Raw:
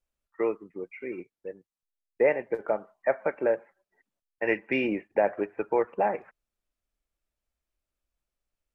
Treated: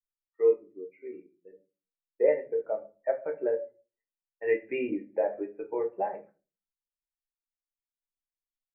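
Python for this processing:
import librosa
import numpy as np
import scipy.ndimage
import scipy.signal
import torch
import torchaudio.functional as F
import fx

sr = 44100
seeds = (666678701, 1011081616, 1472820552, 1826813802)

y = fx.room_shoebox(x, sr, seeds[0], volume_m3=48.0, walls='mixed', distance_m=0.53)
y = fx.spectral_expand(y, sr, expansion=1.5)
y = F.gain(torch.from_numpy(y), -4.0).numpy()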